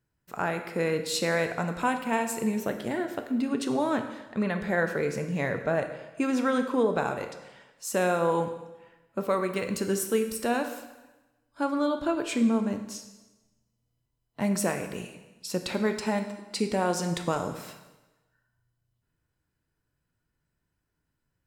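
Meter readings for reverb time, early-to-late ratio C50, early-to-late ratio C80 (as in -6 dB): 1.1 s, 8.5 dB, 10.5 dB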